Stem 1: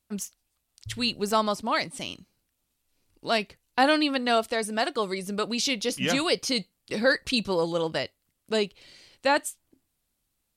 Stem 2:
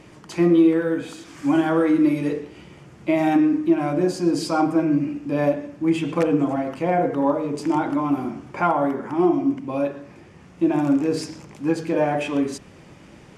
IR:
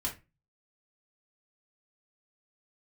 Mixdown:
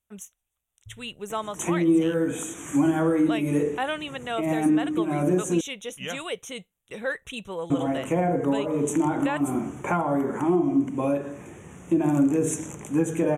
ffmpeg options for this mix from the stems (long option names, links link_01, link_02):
-filter_complex "[0:a]equalizer=frequency=280:width_type=o:width=0.94:gain=-7,volume=-6dB,asplit=2[link_01][link_02];[1:a]highshelf=frequency=5600:width_type=q:width=1.5:gain=9,acrossover=split=230[link_03][link_04];[link_04]acompressor=threshold=-26dB:ratio=5[link_05];[link_03][link_05]amix=inputs=2:normalize=0,adelay=1300,volume=2.5dB,asplit=3[link_06][link_07][link_08];[link_06]atrim=end=5.61,asetpts=PTS-STARTPTS,afade=type=out:start_time=5.606:duration=0.004:curve=hsin[link_09];[link_07]atrim=start=5.61:end=7.7,asetpts=PTS-STARTPTS,volume=0[link_10];[link_08]atrim=start=7.7,asetpts=PTS-STARTPTS,afade=type=in:duration=0.004:curve=hsin[link_11];[link_09][link_10][link_11]concat=n=3:v=0:a=1[link_12];[link_02]apad=whole_len=647115[link_13];[link_12][link_13]sidechaincompress=threshold=-34dB:ratio=8:attack=16:release=137[link_14];[link_01][link_14]amix=inputs=2:normalize=0,asuperstop=centerf=4700:order=8:qfactor=2.2,equalizer=frequency=440:width_type=o:width=0.27:gain=3.5"